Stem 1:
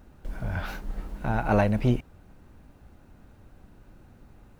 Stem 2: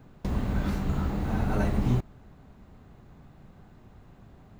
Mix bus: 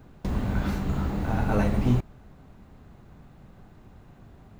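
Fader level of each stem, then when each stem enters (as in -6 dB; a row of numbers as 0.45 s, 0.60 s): -6.5 dB, +1.0 dB; 0.00 s, 0.00 s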